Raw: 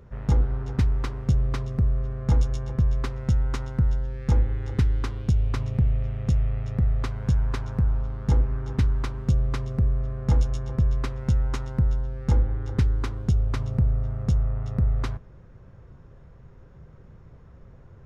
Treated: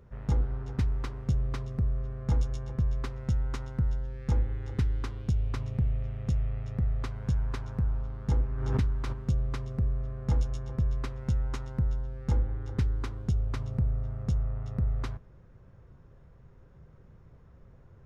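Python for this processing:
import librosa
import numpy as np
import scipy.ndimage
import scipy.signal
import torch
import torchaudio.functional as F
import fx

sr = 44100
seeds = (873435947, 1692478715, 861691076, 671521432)

y = fx.pre_swell(x, sr, db_per_s=36.0, at=(8.51, 9.12), fade=0.02)
y = y * 10.0 ** (-6.0 / 20.0)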